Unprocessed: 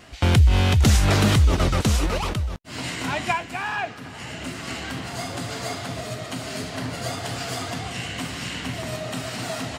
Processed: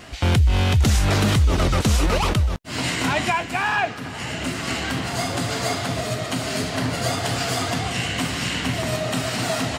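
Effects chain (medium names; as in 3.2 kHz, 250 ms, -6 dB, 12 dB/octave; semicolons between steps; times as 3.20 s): peak limiter -17 dBFS, peak gain reduction 8 dB; trim +6 dB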